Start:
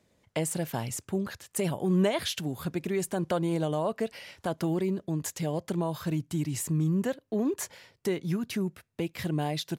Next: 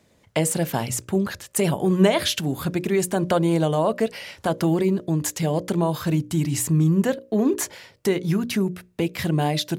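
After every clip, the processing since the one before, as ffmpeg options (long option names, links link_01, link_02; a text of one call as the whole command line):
ffmpeg -i in.wav -af "bandreject=frequency=60:width_type=h:width=6,bandreject=frequency=120:width_type=h:width=6,bandreject=frequency=180:width_type=h:width=6,bandreject=frequency=240:width_type=h:width=6,bandreject=frequency=300:width_type=h:width=6,bandreject=frequency=360:width_type=h:width=6,bandreject=frequency=420:width_type=h:width=6,bandreject=frequency=480:width_type=h:width=6,bandreject=frequency=540:width_type=h:width=6,bandreject=frequency=600:width_type=h:width=6,volume=8.5dB" out.wav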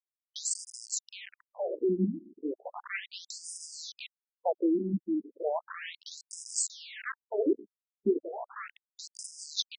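ffmpeg -i in.wav -af "adynamicequalizer=threshold=0.00891:dfrequency=10000:dqfactor=0.82:tfrequency=10000:tqfactor=0.82:attack=5:release=100:ratio=0.375:range=2.5:mode=boostabove:tftype=bell,aeval=exprs='val(0)*gte(abs(val(0)),0.075)':channel_layout=same,afftfilt=real='re*between(b*sr/1024,240*pow(7000/240,0.5+0.5*sin(2*PI*0.35*pts/sr))/1.41,240*pow(7000/240,0.5+0.5*sin(2*PI*0.35*pts/sr))*1.41)':imag='im*between(b*sr/1024,240*pow(7000/240,0.5+0.5*sin(2*PI*0.35*pts/sr))/1.41,240*pow(7000/240,0.5+0.5*sin(2*PI*0.35*pts/sr))*1.41)':win_size=1024:overlap=0.75,volume=-3dB" out.wav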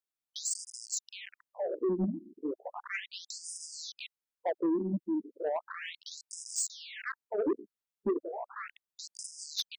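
ffmpeg -i in.wav -af "asoftclip=type=tanh:threshold=-23.5dB" out.wav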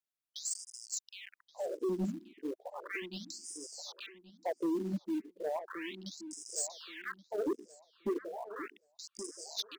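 ffmpeg -i in.wav -filter_complex "[0:a]asplit=2[link_01][link_02];[link_02]acrusher=bits=3:mode=log:mix=0:aa=0.000001,volume=-6dB[link_03];[link_01][link_03]amix=inputs=2:normalize=0,asplit=2[link_04][link_05];[link_05]adelay=1126,lowpass=frequency=1600:poles=1,volume=-11.5dB,asplit=2[link_06][link_07];[link_07]adelay=1126,lowpass=frequency=1600:poles=1,volume=0.22,asplit=2[link_08][link_09];[link_09]adelay=1126,lowpass=frequency=1600:poles=1,volume=0.22[link_10];[link_04][link_06][link_08][link_10]amix=inputs=4:normalize=0,volume=-7dB" out.wav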